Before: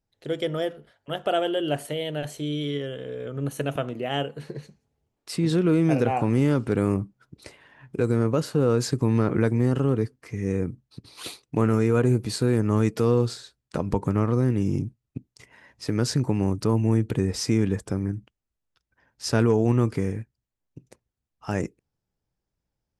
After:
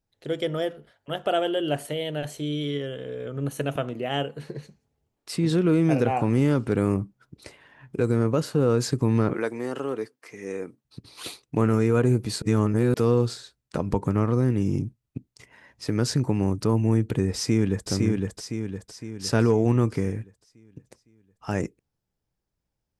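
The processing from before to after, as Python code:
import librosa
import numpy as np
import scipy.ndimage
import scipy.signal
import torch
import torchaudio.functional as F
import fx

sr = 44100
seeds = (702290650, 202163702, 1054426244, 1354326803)

y = fx.highpass(x, sr, hz=420.0, slope=12, at=(9.33, 10.85))
y = fx.echo_throw(y, sr, start_s=17.35, length_s=0.54, ms=510, feedback_pct=50, wet_db=-2.5)
y = fx.edit(y, sr, fx.reverse_span(start_s=12.42, length_s=0.52), tone=tone)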